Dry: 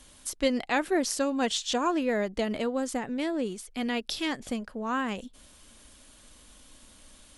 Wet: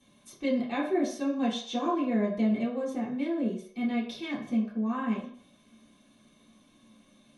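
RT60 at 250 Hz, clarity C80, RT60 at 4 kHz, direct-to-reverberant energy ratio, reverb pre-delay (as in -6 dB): 0.40 s, 10.0 dB, 0.55 s, -9.5 dB, 3 ms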